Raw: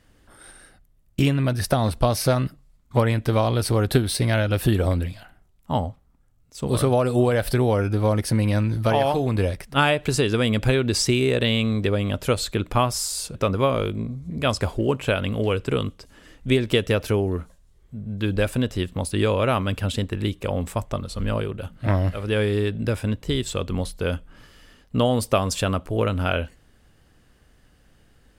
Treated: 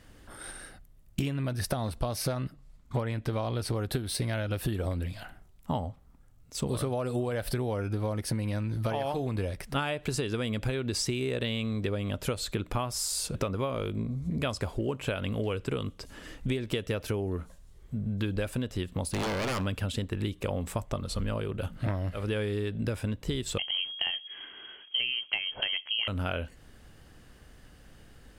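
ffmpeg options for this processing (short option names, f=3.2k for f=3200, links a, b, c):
-filter_complex "[0:a]asettb=1/sr,asplit=3[a][b][c];[a]atrim=end=2.324[d];[b]atrim=start=2.32:end=3.76,asetpts=PTS-STARTPTS,afade=t=in:d=0.004:c=qsin,afade=t=out:st=1.436:d=0.004:c=qsin,highshelf=f=10k:g=-8[e];[c]atrim=start=3.756[f];[d][e]acrossfade=d=0.004:c1=hsin:c2=qsin[g];[g][f]acrossfade=d=0.004:c1=qsin:c2=hsin,asettb=1/sr,asplit=3[h][i][j];[h]atrim=end=19.114[k];[i]atrim=start=19.11:end=19.66,asetpts=PTS-STARTPTS,afade=t=in:d=0.004:c=qsin,afade=t=out:st=0.546:d=0.004:c=qsin,aeval=exprs='0.0891*(abs(mod(val(0)/0.0891+3,4)-2)-1)':c=same[l];[j]atrim=start=19.656[m];[k][l]acrossfade=d=0.004:c1=hsin:c2=qsin[n];[n][m]acrossfade=d=0.004:c1=qsin:c2=hsin,asettb=1/sr,asplit=3[o][p][q];[o]atrim=end=23.584[r];[p]atrim=start=23.58:end=26.08,asetpts=PTS-STARTPTS,afade=t=in:d=0.004:c=qsin,afade=t=out:st=2.496:d=0.004:c=qsin,lowpass=f=2.8k:t=q:w=0.5098,lowpass=f=2.8k:t=q:w=0.6013,lowpass=f=2.8k:t=q:w=0.9,lowpass=f=2.8k:t=q:w=2.563,afreqshift=-3300[s];[q]atrim=start=26.076[t];[r][s]acrossfade=d=0.004:c1=hsin:c2=qsin[u];[u][t]acrossfade=d=0.004:c1=qsin:c2=hsin,acompressor=threshold=-32dB:ratio=6,volume=3.5dB"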